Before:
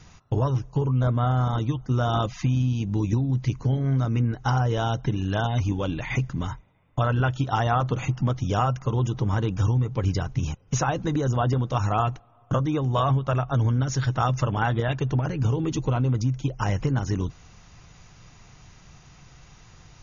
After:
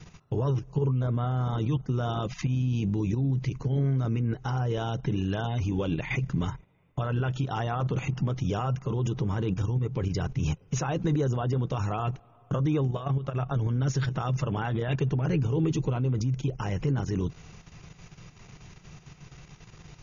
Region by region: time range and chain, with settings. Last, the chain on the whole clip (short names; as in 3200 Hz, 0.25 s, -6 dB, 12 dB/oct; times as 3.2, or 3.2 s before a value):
12.87–13.36 notch 950 Hz, Q 15 + compressor 20:1, threshold -26 dBFS
whole clip: level quantiser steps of 10 dB; limiter -24 dBFS; fifteen-band EQ 160 Hz +7 dB, 400 Hz +7 dB, 2500 Hz +4 dB; gain +1 dB